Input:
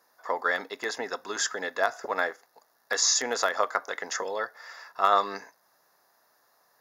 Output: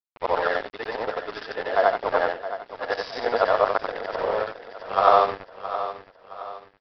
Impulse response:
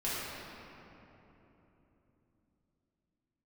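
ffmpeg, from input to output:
-af "afftfilt=real='re':imag='-im':win_size=8192:overlap=0.75,equalizer=f=600:w=0.68:g=13,aresample=11025,aeval=exprs='sgn(val(0))*max(abs(val(0))-0.0237,0)':c=same,aresample=44100,aecho=1:1:668|1336|2004|2672:0.251|0.1|0.0402|0.0161,adynamicequalizer=threshold=0.0126:dfrequency=1800:dqfactor=0.7:tfrequency=1800:tqfactor=0.7:attack=5:release=100:ratio=0.375:range=1.5:mode=cutabove:tftype=highshelf,volume=1.41"

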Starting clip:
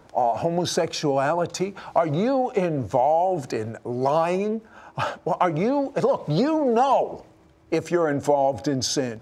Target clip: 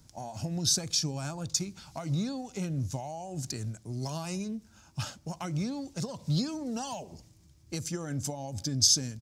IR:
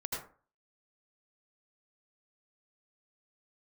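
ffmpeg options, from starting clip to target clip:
-af "firequalizer=gain_entry='entry(110,0);entry(450,-22);entry(5200,5)':delay=0.05:min_phase=1"

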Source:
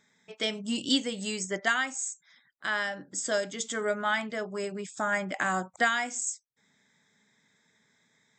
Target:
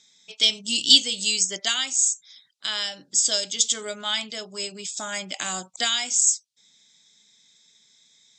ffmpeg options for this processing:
-af "lowpass=5600,aexciter=amount=13.9:drive=3.1:freq=2700,volume=0.596"

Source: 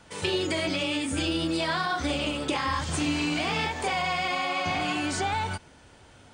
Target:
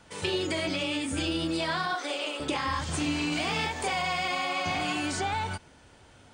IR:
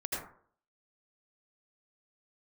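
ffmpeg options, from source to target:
-filter_complex "[0:a]asettb=1/sr,asplit=3[s0][s1][s2];[s0]atrim=end=1.954[s3];[s1]atrim=start=1.95:end=2.4,asetpts=PTS-STARTPTS,afade=t=in:d=0.004:c=qsin,afade=t=out:st=0.446:d=0.004:c=qsin,highpass=f=370:w=0.5412,highpass=f=370:w=1.3066[s4];[s2]atrim=start=2.396[s5];[s3][s4]acrossfade=d=0.004:c1=hsin:c2=qsin[s6];[s6][s5]acrossfade=d=0.004:c1=qsin:c2=hsin,asettb=1/sr,asplit=3[s7][s8][s9];[s7]atrim=end=3.324[s10];[s8]atrim=start=3.32:end=5.12,asetpts=PTS-STARTPTS,afade=t=in:d=0.004:c=qsin,afade=t=out:st=1.796:d=0.004:c=qsin,highshelf=f=6600:g=6.5[s11];[s9]atrim=start=5.116[s12];[s10][s11]acrossfade=d=0.004:c1=hsin:c2=qsin[s13];[s13][s12]acrossfade=d=0.004:c1=qsin:c2=hsin,volume=0.794"

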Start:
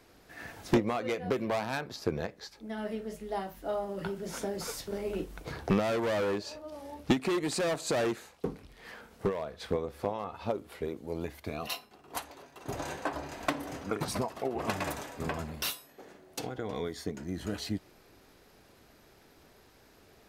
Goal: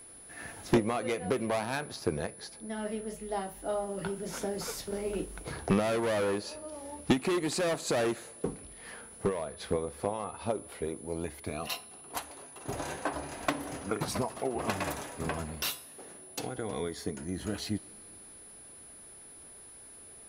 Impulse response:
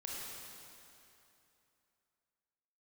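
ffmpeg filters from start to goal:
-filter_complex "[0:a]aeval=exprs='val(0)+0.00355*sin(2*PI*10000*n/s)':c=same,asplit=2[s0][s1];[1:a]atrim=start_sample=2205[s2];[s1][s2]afir=irnorm=-1:irlink=0,volume=0.0891[s3];[s0][s3]amix=inputs=2:normalize=0"

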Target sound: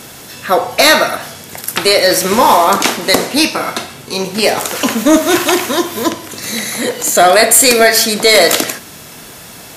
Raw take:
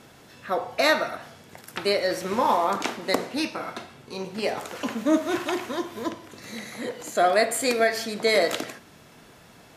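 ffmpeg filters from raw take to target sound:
-af "crystalizer=i=2.5:c=0,apsyclip=5.96,volume=0.841"

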